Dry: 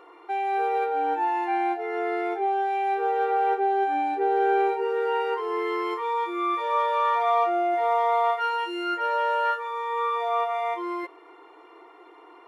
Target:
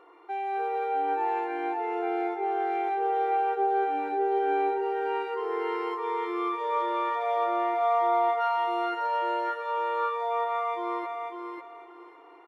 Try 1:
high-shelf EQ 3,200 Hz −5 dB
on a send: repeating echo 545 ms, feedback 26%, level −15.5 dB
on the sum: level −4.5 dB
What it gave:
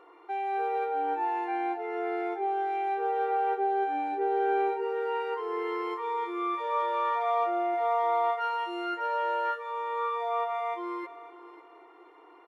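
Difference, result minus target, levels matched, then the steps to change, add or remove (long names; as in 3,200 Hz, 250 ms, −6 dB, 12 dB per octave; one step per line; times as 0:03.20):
echo-to-direct −12 dB
change: repeating echo 545 ms, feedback 26%, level −3.5 dB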